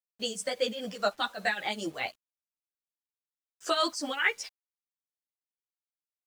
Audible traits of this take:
tremolo triangle 5 Hz, depth 80%
a quantiser's noise floor 10 bits, dither none
a shimmering, thickened sound

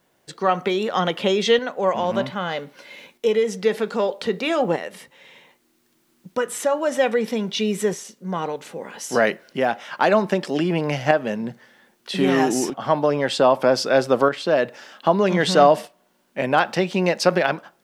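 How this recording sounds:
a quantiser's noise floor 12 bits, dither triangular
tremolo saw up 0.63 Hz, depth 50%

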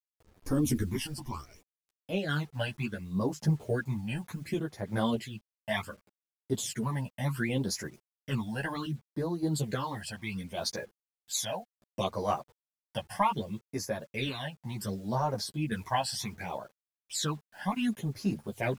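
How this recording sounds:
phaser sweep stages 12, 0.67 Hz, lowest notch 370–3,200 Hz
a quantiser's noise floor 10 bits, dither none
sample-and-hold tremolo
a shimmering, thickened sound

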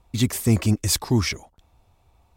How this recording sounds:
background noise floor −63 dBFS
spectral slope −4.5 dB per octave

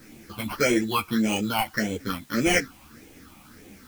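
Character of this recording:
aliases and images of a low sample rate 3,700 Hz, jitter 0%
phaser sweep stages 6, 1.7 Hz, lowest notch 420–1,300 Hz
a quantiser's noise floor 10 bits, dither triangular
a shimmering, thickened sound

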